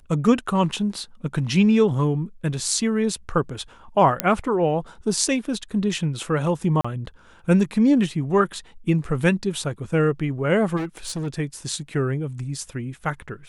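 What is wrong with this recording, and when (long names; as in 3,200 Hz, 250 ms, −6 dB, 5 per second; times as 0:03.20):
0:04.20: click −2 dBFS
0:06.81–0:06.84: drop-out 35 ms
0:10.76–0:11.28: clipping −24 dBFS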